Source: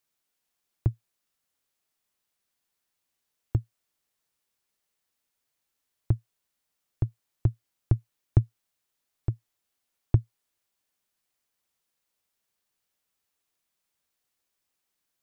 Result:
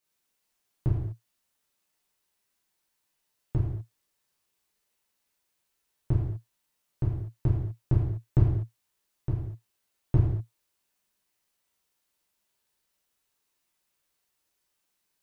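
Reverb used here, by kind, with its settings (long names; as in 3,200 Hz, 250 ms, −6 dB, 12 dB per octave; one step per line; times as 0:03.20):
reverb whose tail is shaped and stops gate 270 ms falling, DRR −7.5 dB
level −5 dB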